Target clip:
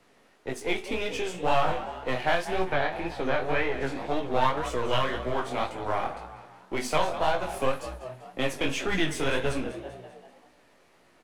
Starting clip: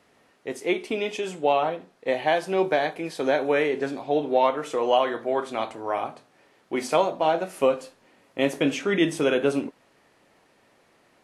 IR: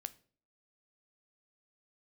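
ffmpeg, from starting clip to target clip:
-filter_complex "[0:a]aeval=exprs='if(lt(val(0),0),0.447*val(0),val(0))':channel_layout=same,asplit=6[link_01][link_02][link_03][link_04][link_05][link_06];[link_02]adelay=195,afreqshift=61,volume=-14dB[link_07];[link_03]adelay=390,afreqshift=122,volume=-20.4dB[link_08];[link_04]adelay=585,afreqshift=183,volume=-26.8dB[link_09];[link_05]adelay=780,afreqshift=244,volume=-33.1dB[link_10];[link_06]adelay=975,afreqshift=305,volume=-39.5dB[link_11];[link_01][link_07][link_08][link_09][link_10][link_11]amix=inputs=6:normalize=0,asettb=1/sr,asplit=3[link_12][link_13][link_14];[link_12]atrim=end=2.624[link_15];[link_13]atrim=start=2.62:end=3.81,asetpts=PTS-STARTPTS,afade=type=in:duration=0.004:curve=qsin,afade=type=out:start_time=1.186:duration=0.004:curve=qsin,acrossover=split=3800[link_16][link_17];[link_17]acompressor=threshold=-59dB:ratio=4:attack=1:release=60[link_18];[link_16][link_18]amix=inputs=2:normalize=0[link_19];[link_14]atrim=start=3.806[link_20];[link_15][link_19]acrossfade=duration=0.004:curve1=hsin:curve2=qsin[link_21];[link_21][link_20]acrossfade=duration=0.004:curve1=qsin:curve2=hsin,flanger=delay=16:depth=7.8:speed=1.9,asettb=1/sr,asplit=3[link_22][link_23][link_24];[link_22]atrim=end=1.494[link_25];[link_23]atrim=start=1.49:end=2.08,asetpts=PTS-STARTPTS,afade=type=in:duration=0.004:curve=qsin,afade=type=out:start_time=0.586:duration=0.004:curve=qsin,asplit=2[link_26][link_27];[link_27]adelay=20,volume=-3dB[link_28];[link_26][link_28]amix=inputs=2:normalize=0,atrim=end_sample=26019[link_29];[link_24]atrim=start=2.076[link_30];[link_25][link_29]acrossfade=duration=0.004:curve1=hsin:curve2=qsin[link_31];[link_31][link_30]acrossfade=duration=0.004:curve1=qsin:curve2=hsin,asettb=1/sr,asplit=3[link_32][link_33][link_34];[link_32]atrim=end=4.694[link_35];[link_33]atrim=start=4.69:end=5.35,asetpts=PTS-STARTPTS,afade=type=in:duration=0.004:curve=qsin,afade=type=out:start_time=0.656:duration=0.004:curve=qsin,equalizer=frequency=780:width_type=o:width=0.3:gain=-12[link_36];[link_34]atrim=start=5.346[link_37];[link_35][link_36]acrossfade=duration=0.004:curve1=hsin:curve2=qsin[link_38];[link_38][link_37]acrossfade=duration=0.004:curve1=qsin:curve2=hsin,acrossover=split=170|790|4400[link_39][link_40][link_41][link_42];[link_40]acompressor=threshold=-36dB:ratio=6[link_43];[link_39][link_43][link_41][link_42]amix=inputs=4:normalize=0,volume=5.5dB"

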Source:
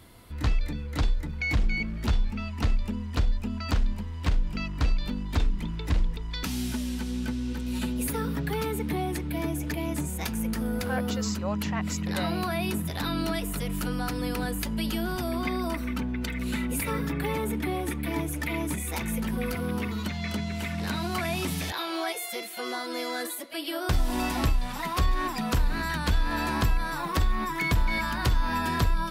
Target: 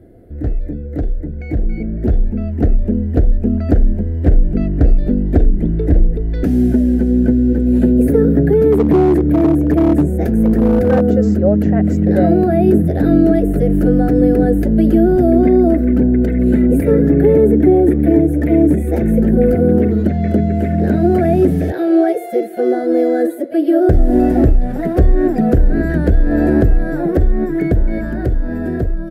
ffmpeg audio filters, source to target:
ffmpeg -i in.wav -filter_complex "[0:a]firequalizer=gain_entry='entry(200,0);entry(350,8);entry(700,0);entry(1000,-29);entry(1600,-10);entry(2500,-25);entry(3800,-29);entry(12000,-22)':delay=0.05:min_phase=1,alimiter=limit=-18dB:level=0:latency=1:release=359,dynaudnorm=framelen=510:gausssize=9:maxgain=8.5dB,asettb=1/sr,asplit=3[link_01][link_02][link_03];[link_01]atrim=end=8.724[link_04];[link_02]atrim=start=8.72:end=11.01,asetpts=PTS-STARTPTS,afade=type=in:duration=0.004:curve=qsin,afade=type=out:start_time=2.286:duration=0.004:curve=qsin,volume=14.5dB,asoftclip=hard,volume=-14.5dB[link_05];[link_03]atrim=start=11.006[link_06];[link_04][link_05]acrossfade=duration=0.004:curve1=hsin:curve2=qsin[link_07];[link_07][link_06]acrossfade=duration=0.004:curve1=qsin:curve2=hsin,volume=8dB" out.wav

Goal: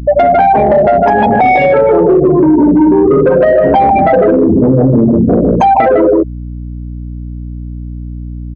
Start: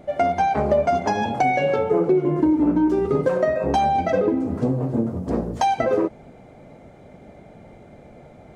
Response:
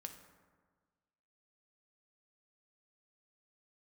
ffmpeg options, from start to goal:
-af "aecho=1:1:153:0.631,afftfilt=real='re*gte(hypot(re,im),0.126)':imag='im*gte(hypot(re,im),0.126)':win_size=1024:overlap=0.75,acontrast=72,highpass=41,aeval=exprs='0.75*(cos(1*acos(clip(val(0)/0.75,-1,1)))-cos(1*PI/2))+0.00473*(cos(2*acos(clip(val(0)/0.75,-1,1)))-cos(2*PI/2))+0.0335*(cos(3*acos(clip(val(0)/0.75,-1,1)))-cos(3*PI/2))+0.00944*(cos(7*acos(clip(val(0)/0.75,-1,1)))-cos(7*PI/2))':channel_layout=same,lowpass=5600,lowshelf=frequency=130:gain=-10,acompressor=threshold=-16dB:ratio=8,asoftclip=type=tanh:threshold=-13.5dB,aeval=exprs='val(0)+0.00562*(sin(2*PI*60*n/s)+sin(2*PI*2*60*n/s)/2+sin(2*PI*3*60*n/s)/3+sin(2*PI*4*60*n/s)/4+sin(2*PI*5*60*n/s)/5)':channel_layout=same,alimiter=level_in=25.5dB:limit=-1dB:release=50:level=0:latency=1,adynamicequalizer=threshold=0.0501:dfrequency=3000:dqfactor=0.7:tfrequency=3000:tqfactor=0.7:attack=5:release=100:ratio=0.375:range=2.5:mode=cutabove:tftype=highshelf,volume=-1.5dB"

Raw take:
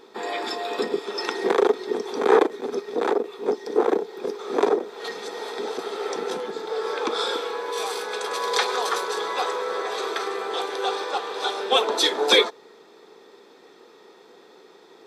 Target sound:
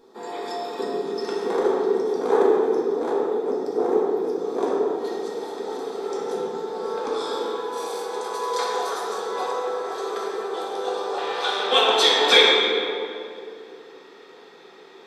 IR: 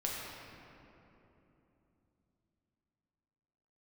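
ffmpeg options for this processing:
-filter_complex "[0:a]asetnsamples=nb_out_samples=441:pad=0,asendcmd='11.18 equalizer g 6',equalizer=frequency=2400:width_type=o:width=1.9:gain=-10[link_01];[1:a]atrim=start_sample=2205,asetrate=61740,aresample=44100[link_02];[link_01][link_02]afir=irnorm=-1:irlink=0"

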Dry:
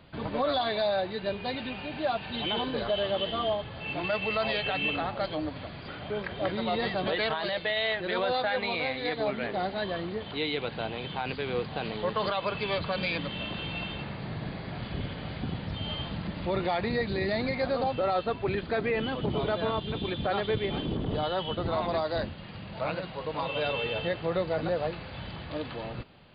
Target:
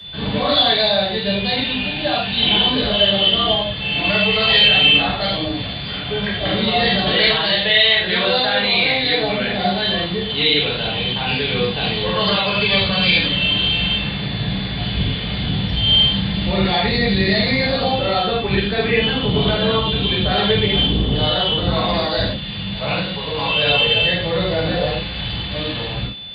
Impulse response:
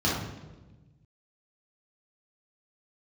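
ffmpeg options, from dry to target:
-filter_complex "[0:a]aeval=exprs='val(0)+0.00316*sin(2*PI*3500*n/s)':channel_layout=same[link_01];[1:a]atrim=start_sample=2205,atrim=end_sample=3528,asetrate=28224,aresample=44100[link_02];[link_01][link_02]afir=irnorm=-1:irlink=0,acrossover=split=270|700|1100[link_03][link_04][link_05][link_06];[link_06]crystalizer=i=8.5:c=0[link_07];[link_03][link_04][link_05][link_07]amix=inputs=4:normalize=0,volume=-8dB"

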